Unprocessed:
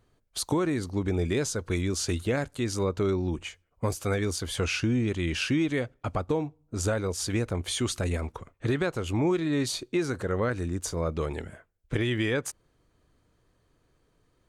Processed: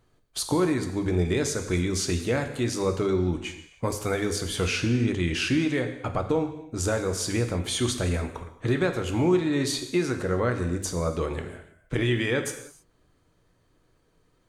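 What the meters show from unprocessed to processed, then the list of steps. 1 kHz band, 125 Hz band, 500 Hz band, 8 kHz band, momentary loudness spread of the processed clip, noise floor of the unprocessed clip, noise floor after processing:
+2.5 dB, +2.0 dB, +2.5 dB, +2.5 dB, 8 LU, −70 dBFS, −66 dBFS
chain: mains-hum notches 50/100/150/200 Hz
reverb whose tail is shaped and stops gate 340 ms falling, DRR 5.5 dB
level +1.5 dB

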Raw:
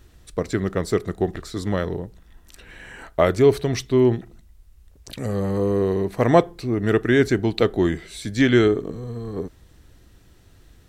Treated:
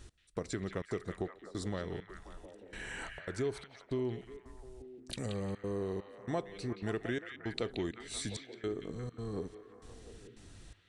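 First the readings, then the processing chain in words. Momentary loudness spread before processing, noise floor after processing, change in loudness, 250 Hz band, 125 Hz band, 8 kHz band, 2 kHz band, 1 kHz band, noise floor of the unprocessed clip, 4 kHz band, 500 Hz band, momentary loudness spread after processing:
15 LU, −60 dBFS, −18.0 dB, −18.0 dB, −16.5 dB, −8.5 dB, −15.5 dB, −18.5 dB, −52 dBFS, −12.0 dB, −18.5 dB, 16 LU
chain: high-shelf EQ 4,900 Hz +8.5 dB
downward compressor 3 to 1, threshold −35 dBFS, peak gain reduction 19 dB
gate pattern "x...xxxxx.xxx" 165 BPM −24 dB
echo through a band-pass that steps 177 ms, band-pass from 2,600 Hz, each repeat −0.7 octaves, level −3 dB
downsampling to 22,050 Hz
level −3 dB

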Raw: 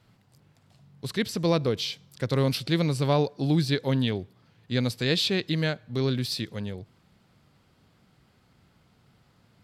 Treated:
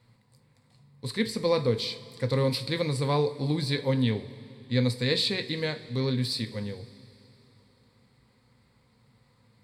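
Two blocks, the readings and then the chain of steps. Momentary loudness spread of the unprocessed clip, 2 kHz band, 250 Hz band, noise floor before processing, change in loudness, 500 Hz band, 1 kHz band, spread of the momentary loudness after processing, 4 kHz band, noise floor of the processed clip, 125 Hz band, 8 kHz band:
10 LU, −1.5 dB, −2.5 dB, −64 dBFS, −1.0 dB, 0.0 dB, −1.5 dB, 10 LU, −0.5 dB, −65 dBFS, −1.5 dB, −2.5 dB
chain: EQ curve with evenly spaced ripples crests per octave 0.96, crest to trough 9 dB
coupled-rooms reverb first 0.3 s, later 3.3 s, from −18 dB, DRR 6.5 dB
level −3.5 dB

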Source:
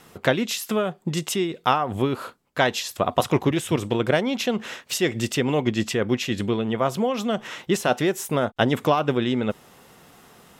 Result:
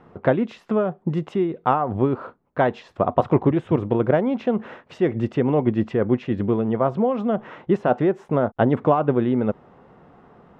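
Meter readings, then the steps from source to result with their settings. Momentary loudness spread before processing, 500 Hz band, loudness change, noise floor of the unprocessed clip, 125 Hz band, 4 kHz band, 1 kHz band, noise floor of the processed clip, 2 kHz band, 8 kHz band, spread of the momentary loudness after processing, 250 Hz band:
5 LU, +3.0 dB, +2.0 dB, −54 dBFS, +3.0 dB, below −15 dB, +1.0 dB, −58 dBFS, −6.0 dB, below −25 dB, 6 LU, +3.0 dB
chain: low-pass filter 1,100 Hz 12 dB per octave
level +3 dB

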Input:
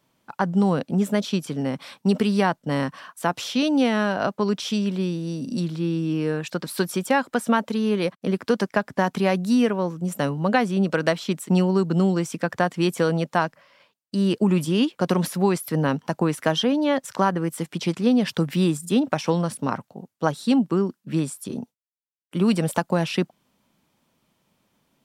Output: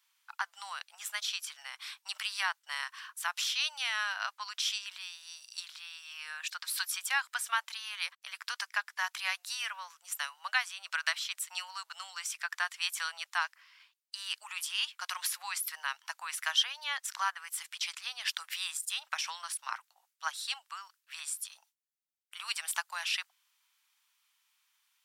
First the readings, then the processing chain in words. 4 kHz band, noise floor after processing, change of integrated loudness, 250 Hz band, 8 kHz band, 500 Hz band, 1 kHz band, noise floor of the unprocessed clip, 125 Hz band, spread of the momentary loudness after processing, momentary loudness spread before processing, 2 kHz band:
−1.0 dB, −78 dBFS, −11.5 dB, below −40 dB, 0.0 dB, −36.5 dB, −12.0 dB, −75 dBFS, below −40 dB, 11 LU, 8 LU, −3.0 dB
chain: Bessel high-pass filter 1,800 Hz, order 8

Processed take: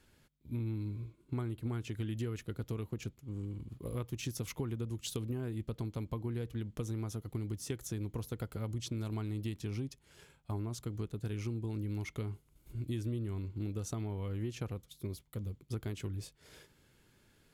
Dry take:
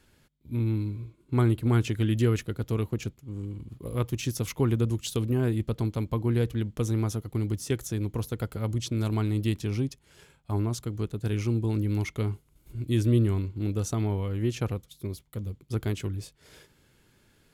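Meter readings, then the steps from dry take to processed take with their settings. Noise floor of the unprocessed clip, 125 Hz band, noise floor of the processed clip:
−64 dBFS, −10.5 dB, −68 dBFS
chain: downward compressor, threshold −30 dBFS, peak gain reduction 12 dB
level −4 dB

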